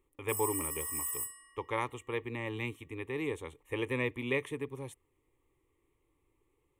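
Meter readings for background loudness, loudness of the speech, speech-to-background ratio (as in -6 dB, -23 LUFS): -35.5 LUFS, -37.0 LUFS, -1.5 dB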